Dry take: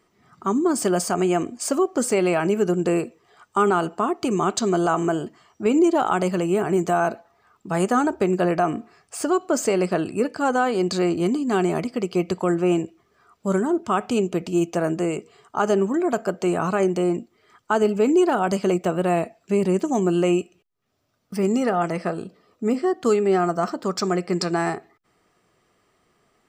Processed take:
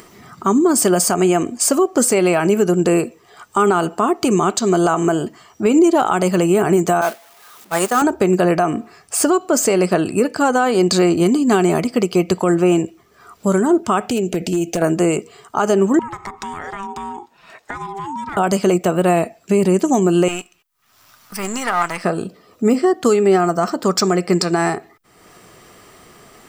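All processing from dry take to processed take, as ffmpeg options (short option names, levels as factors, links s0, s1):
-filter_complex "[0:a]asettb=1/sr,asplit=3[s0][s1][s2];[s0]atrim=end=7.014[s3];[s1]atrim=start=7.01:end=8.02,asetpts=PTS-STARTPTS,afade=t=in:d=0.004:c=qsin,afade=t=out:st=1.006:d=0.004:c=qsin,aeval=exprs='val(0)+0.5*0.0376*sgn(val(0))':c=same,highpass=f=620:p=1,agate=range=0.0224:threshold=0.0708:ratio=3:release=100:detection=peak[s4];[s2]atrim=start=8.016[s5];[s3][s4]acrossfade=d=0.004:c1=hsin:c2=qsin[s6];[s6][s5]acrossfade=d=0.004:c1=qsin:c2=hsin,asettb=1/sr,asplit=3[s7][s8][s9];[s7]atrim=end=14.084[s10];[s8]atrim=start=14.08:end=14.82,asetpts=PTS-STARTPTS,afade=t=in:d=0.004:c=qsin,afade=t=out:st=0.736:d=0.004:c=qsin,asuperstop=centerf=1100:order=4:qfactor=1.7,acompressor=threshold=0.0708:ratio=12:attack=3.2:release=140:knee=1:detection=peak,aeval=exprs='0.0944*(abs(mod(val(0)/0.0944+3,4)-2)-1)':c=same[s11];[s9]atrim=start=14.816[s12];[s10][s11]acrossfade=d=0.004:c1=hsin:c2=qsin[s13];[s13][s12]acrossfade=d=0.004:c1=qsin:c2=hsin,asettb=1/sr,asplit=3[s14][s15][s16];[s14]atrim=end=15.994[s17];[s15]atrim=start=15.99:end=18.37,asetpts=PTS-STARTPTS,afade=t=in:d=0.004:c=qsin,afade=t=out:st=2.376:d=0.004:c=qsin,acompressor=threshold=0.0224:ratio=6:attack=3.2:release=140:knee=1:detection=peak,aeval=exprs='val(0)*sin(2*PI*590*n/s)':c=same,asplit=2[s18][s19];[s19]highpass=f=720:p=1,volume=2.24,asoftclip=type=tanh:threshold=0.15[s20];[s18][s20]amix=inputs=2:normalize=0,lowpass=f=3600:p=1,volume=0.501[s21];[s16]atrim=start=18.366[s22];[s17][s21]acrossfade=d=0.004:c1=hsin:c2=qsin[s23];[s23][s22]acrossfade=d=0.004:c1=qsin:c2=hsin,asettb=1/sr,asplit=3[s24][s25][s26];[s24]atrim=end=20.284[s27];[s25]atrim=start=20.28:end=22.04,asetpts=PTS-STARTPTS,afade=t=in:d=0.004:c=qsin,afade=t=out:st=1.756:d=0.004:c=qsin,aeval=exprs='if(lt(val(0),0),0.447*val(0),val(0))':c=same,lowshelf=f=730:t=q:w=1.5:g=-11[s28];[s26]atrim=start=22.036[s29];[s27][s28]acrossfade=d=0.004:c1=hsin:c2=qsin[s30];[s30][s29]acrossfade=d=0.004:c1=qsin:c2=hsin,highshelf=f=8400:g=10,alimiter=limit=0.188:level=0:latency=1:release=228,acompressor=mode=upward:threshold=0.00708:ratio=2.5,volume=2.82"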